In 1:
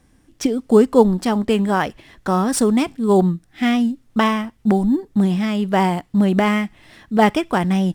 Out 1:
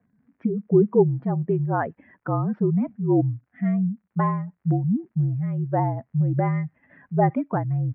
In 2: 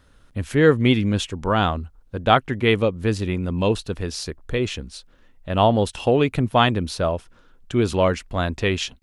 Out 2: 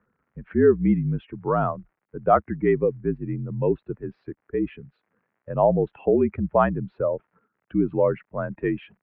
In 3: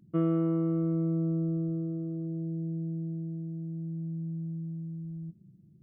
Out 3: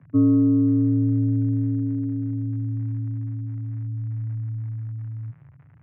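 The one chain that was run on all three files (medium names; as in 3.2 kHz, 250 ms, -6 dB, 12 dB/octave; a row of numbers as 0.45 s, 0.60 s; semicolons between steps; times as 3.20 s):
spectral contrast enhancement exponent 1.7; crackle 140 per s -49 dBFS; mistuned SSB -52 Hz 170–2100 Hz; normalise loudness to -24 LUFS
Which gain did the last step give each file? -4.5 dB, -1.5 dB, +10.5 dB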